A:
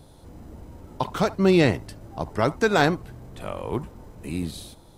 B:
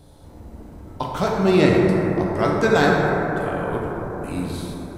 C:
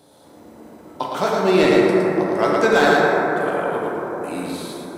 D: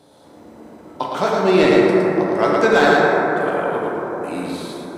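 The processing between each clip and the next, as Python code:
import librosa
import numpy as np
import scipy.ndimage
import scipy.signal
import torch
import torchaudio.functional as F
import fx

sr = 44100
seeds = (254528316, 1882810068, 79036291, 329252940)

y1 = fx.rev_plate(x, sr, seeds[0], rt60_s=4.4, hf_ratio=0.25, predelay_ms=0, drr_db=-3.0)
y1 = y1 * 10.0 ** (-1.0 / 20.0)
y2 = scipy.signal.sosfilt(scipy.signal.butter(2, 280.0, 'highpass', fs=sr, output='sos'), y1)
y2 = np.clip(y2, -10.0 ** (-10.0 / 20.0), 10.0 ** (-10.0 / 20.0))
y2 = y2 + 10.0 ** (-3.5 / 20.0) * np.pad(y2, (int(112 * sr / 1000.0), 0))[:len(y2)]
y2 = y2 * 10.0 ** (2.0 / 20.0)
y3 = fx.high_shelf(y2, sr, hz=10000.0, db=-10.5)
y3 = y3 * 10.0 ** (1.5 / 20.0)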